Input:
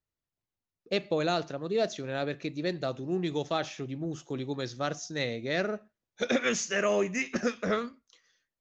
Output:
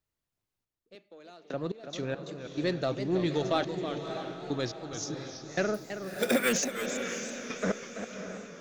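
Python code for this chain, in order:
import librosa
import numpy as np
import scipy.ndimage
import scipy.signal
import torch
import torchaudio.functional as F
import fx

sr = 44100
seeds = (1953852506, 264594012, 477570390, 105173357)

p1 = fx.highpass(x, sr, hz=200.0, slope=24, at=(0.95, 1.54))
p2 = 10.0 ** (-30.0 / 20.0) * np.tanh(p1 / 10.0 ** (-30.0 / 20.0))
p3 = p1 + (p2 * 10.0 ** (-4.0 / 20.0))
p4 = fx.step_gate(p3, sr, bpm=70, pattern='xxx....x.x..xx', floor_db=-24.0, edge_ms=4.5)
p5 = p4 + fx.echo_diffused(p4, sr, ms=610, feedback_pct=45, wet_db=-8.0, dry=0)
p6 = fx.resample_bad(p5, sr, factor=4, down='none', up='hold', at=(5.74, 6.53))
p7 = fx.echo_warbled(p6, sr, ms=328, feedback_pct=31, rate_hz=2.8, cents=171, wet_db=-9.5)
y = p7 * 10.0 ** (-1.0 / 20.0)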